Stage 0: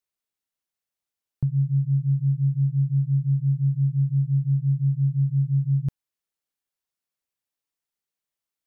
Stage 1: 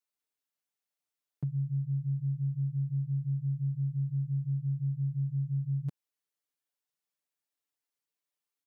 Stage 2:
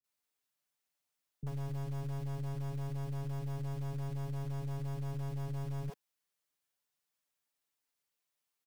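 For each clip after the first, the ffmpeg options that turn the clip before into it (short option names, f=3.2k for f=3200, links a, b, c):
-af "highpass=180,aecho=1:1:6.8:0.95,acompressor=threshold=-26dB:ratio=2,volume=-5.5dB"
-filter_complex "[0:a]aeval=exprs='(tanh(126*val(0)+0.55)-tanh(0.55))/126':c=same,acrossover=split=150[a][b];[b]acrusher=bits=3:mode=log:mix=0:aa=0.000001[c];[a][c]amix=inputs=2:normalize=0,acrossover=split=330[d][e];[e]adelay=40[f];[d][f]amix=inputs=2:normalize=0,volume=5.5dB"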